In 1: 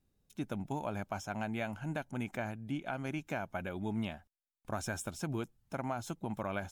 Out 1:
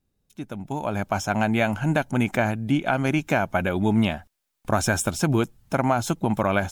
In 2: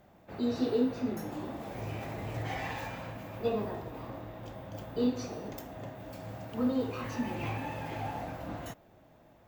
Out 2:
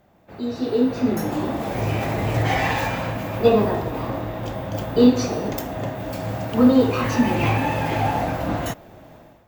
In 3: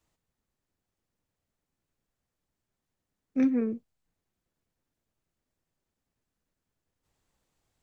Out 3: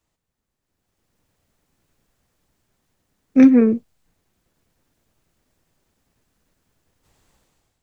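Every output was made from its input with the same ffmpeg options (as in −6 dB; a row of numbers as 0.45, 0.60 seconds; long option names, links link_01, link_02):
-af "dynaudnorm=framelen=610:gausssize=3:maxgain=14dB,volume=1.5dB"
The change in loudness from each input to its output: +15.0, +14.0, +13.5 LU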